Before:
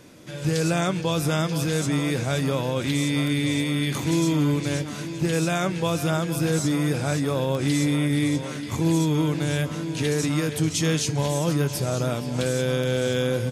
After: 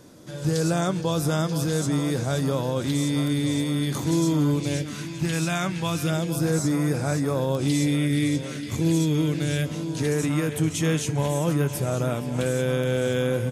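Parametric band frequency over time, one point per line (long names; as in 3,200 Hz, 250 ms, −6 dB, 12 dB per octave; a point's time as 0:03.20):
parametric band −9.5 dB 0.8 octaves
0:04.50 2,400 Hz
0:05.11 460 Hz
0:05.89 460 Hz
0:06.49 3,100 Hz
0:07.35 3,100 Hz
0:08.00 940 Hz
0:09.63 940 Hz
0:10.19 4,700 Hz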